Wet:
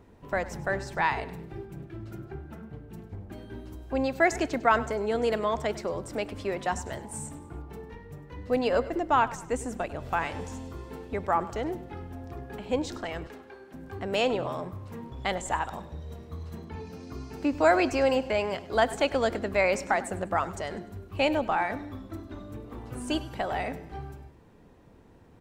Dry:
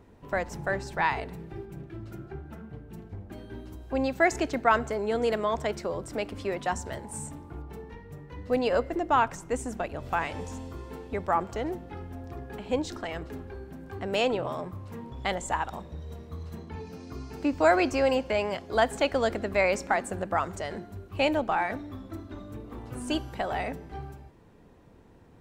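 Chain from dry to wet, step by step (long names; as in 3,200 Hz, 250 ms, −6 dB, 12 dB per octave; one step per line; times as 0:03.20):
0:13.27–0:13.74: meter weighting curve A
repeating echo 100 ms, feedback 41%, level −17.5 dB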